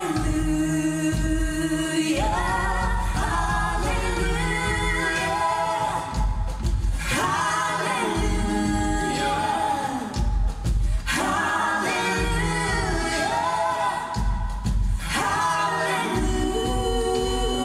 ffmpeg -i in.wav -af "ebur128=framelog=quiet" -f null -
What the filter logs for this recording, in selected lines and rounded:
Integrated loudness:
  I:         -24.1 LUFS
  Threshold: -34.1 LUFS
Loudness range:
  LRA:         1.0 LU
  Threshold: -44.1 LUFS
  LRA low:   -24.5 LUFS
  LRA high:  -23.5 LUFS